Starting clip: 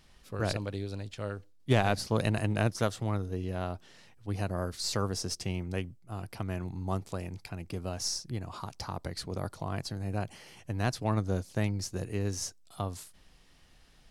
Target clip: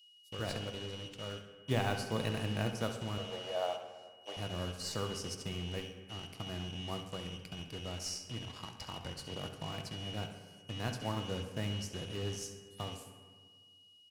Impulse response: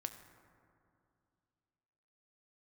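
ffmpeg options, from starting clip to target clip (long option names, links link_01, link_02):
-filter_complex "[0:a]aeval=exprs='val(0)+0.00794*sin(2*PI*2900*n/s)':channel_layout=same,acrossover=split=3800[link_01][link_02];[link_01]acrusher=bits=5:mix=0:aa=0.5[link_03];[link_03][link_02]amix=inputs=2:normalize=0,asettb=1/sr,asplit=3[link_04][link_05][link_06];[link_04]atrim=end=3.184[link_07];[link_05]atrim=start=3.18:end=4.37,asetpts=PTS-STARTPTS,afade=type=in:duration=0.004:curve=qsin,afade=type=out:start_time=1.186:duration=0.004:curve=qsin,highpass=frequency=610:width_type=q:width=4.9[link_08];[link_06]atrim=start=4.366[link_09];[link_07][link_08]acrossfade=duration=0.004:curve1=hsin:curve2=qsin[link_10];[link_10][link_09]acrossfade=duration=0.004:curve1=qsin:curve2=hsin,aecho=1:1:68|136|204|272|340:0.251|0.123|0.0603|0.0296|0.0145[link_11];[1:a]atrim=start_sample=2205,asetrate=66150,aresample=44100[link_12];[link_11][link_12]afir=irnorm=-1:irlink=0,volume=-1dB"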